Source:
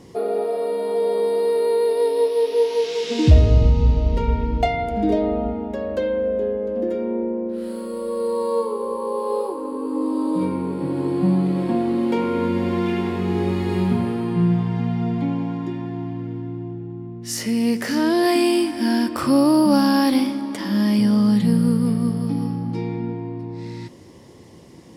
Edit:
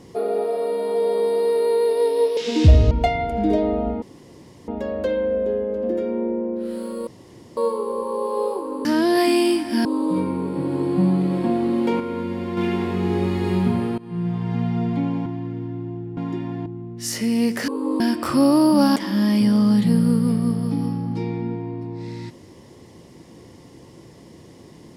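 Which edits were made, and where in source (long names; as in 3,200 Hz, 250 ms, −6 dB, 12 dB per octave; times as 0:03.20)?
0:02.37–0:03.00: remove
0:03.54–0:04.50: remove
0:05.61: splice in room tone 0.66 s
0:08.00–0:08.50: fill with room tone
0:09.78–0:10.10: swap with 0:17.93–0:18.93
0:12.25–0:12.82: clip gain −5.5 dB
0:14.23–0:14.85: fade in, from −21.5 dB
0:15.51–0:16.00: move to 0:16.91
0:19.89–0:20.54: remove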